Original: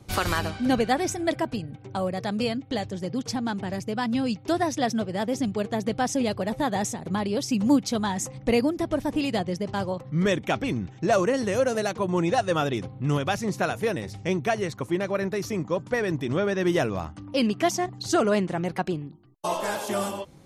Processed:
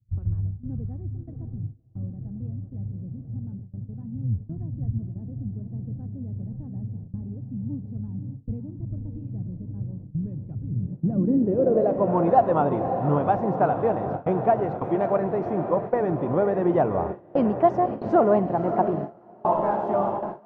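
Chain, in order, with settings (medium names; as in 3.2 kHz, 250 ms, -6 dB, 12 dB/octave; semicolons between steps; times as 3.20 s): 4.22–4.98 s: octave divider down 1 oct, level -3 dB; 14.75–15.18 s: treble shelf 2.6 kHz +10 dB; echo that smears into a reverb 563 ms, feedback 73%, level -9 dB; gate with hold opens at -19 dBFS; low-pass sweep 110 Hz -> 860 Hz, 10.74–12.15 s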